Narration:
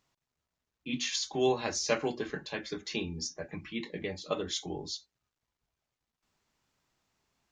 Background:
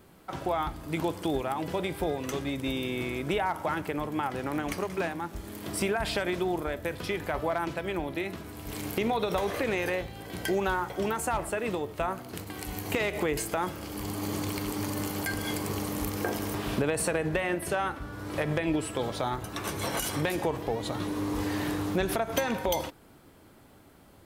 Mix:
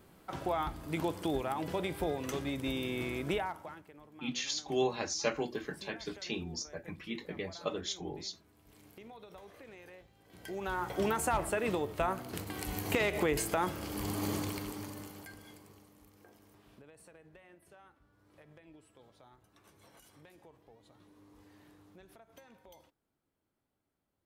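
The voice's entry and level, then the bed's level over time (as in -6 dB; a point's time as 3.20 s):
3.35 s, -3.0 dB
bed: 3.34 s -4 dB
3.88 s -23.5 dB
10.19 s -23.5 dB
10.92 s -1.5 dB
14.29 s -1.5 dB
15.94 s -29.5 dB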